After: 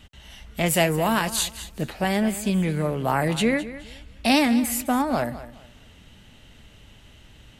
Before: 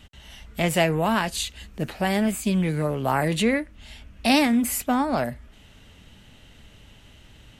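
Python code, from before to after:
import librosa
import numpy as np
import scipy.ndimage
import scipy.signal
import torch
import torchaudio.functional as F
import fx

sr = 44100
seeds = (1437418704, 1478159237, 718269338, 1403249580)

y = fx.high_shelf(x, sr, hz=8100.0, db=11.5, at=(0.66, 1.81))
y = fx.echo_feedback(y, sr, ms=210, feedback_pct=25, wet_db=-15.0)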